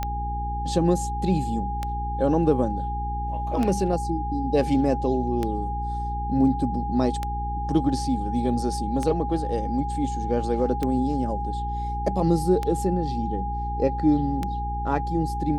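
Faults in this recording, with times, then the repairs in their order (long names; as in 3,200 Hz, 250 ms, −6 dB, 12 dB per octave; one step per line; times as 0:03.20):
mains hum 60 Hz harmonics 7 −30 dBFS
scratch tick 33 1/3 rpm −13 dBFS
whistle 820 Hz −29 dBFS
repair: click removal
hum removal 60 Hz, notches 7
notch filter 820 Hz, Q 30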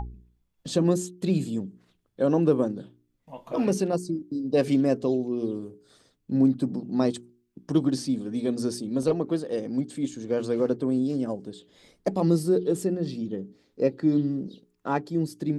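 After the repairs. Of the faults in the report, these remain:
none of them is left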